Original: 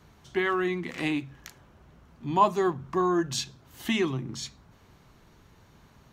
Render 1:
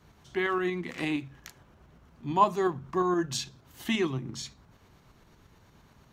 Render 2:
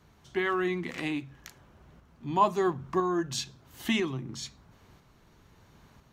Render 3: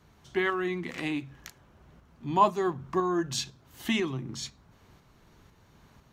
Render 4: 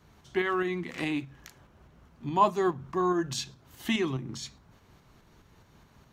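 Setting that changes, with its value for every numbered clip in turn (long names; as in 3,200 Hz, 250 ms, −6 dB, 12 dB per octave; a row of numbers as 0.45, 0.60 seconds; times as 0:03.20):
shaped tremolo, speed: 8.6, 1, 2, 4.8 Hertz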